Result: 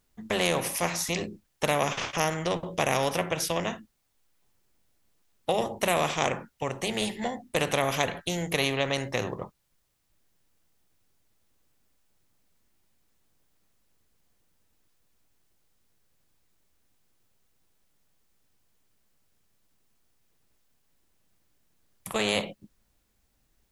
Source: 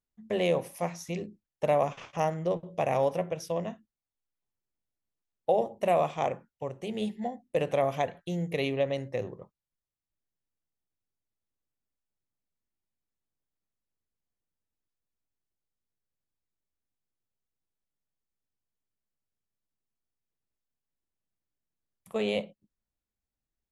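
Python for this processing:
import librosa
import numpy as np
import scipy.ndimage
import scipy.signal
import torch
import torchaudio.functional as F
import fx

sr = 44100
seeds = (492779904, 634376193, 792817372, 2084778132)

y = fx.spectral_comp(x, sr, ratio=2.0)
y = F.gain(torch.from_numpy(y), 5.5).numpy()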